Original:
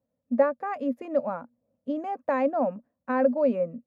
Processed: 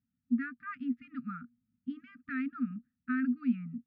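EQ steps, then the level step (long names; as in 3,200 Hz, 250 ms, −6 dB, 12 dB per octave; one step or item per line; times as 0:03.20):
linear-phase brick-wall band-stop 280–1,200 Hz
high-frequency loss of the air 340 metres
0.0 dB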